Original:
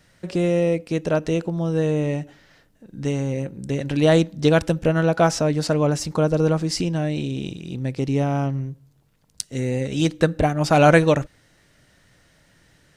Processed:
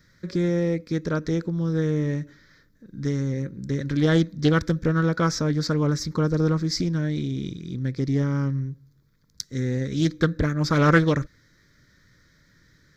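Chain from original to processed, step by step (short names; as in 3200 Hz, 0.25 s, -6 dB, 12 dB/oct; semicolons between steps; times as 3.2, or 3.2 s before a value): fixed phaser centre 2800 Hz, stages 6; Doppler distortion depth 0.21 ms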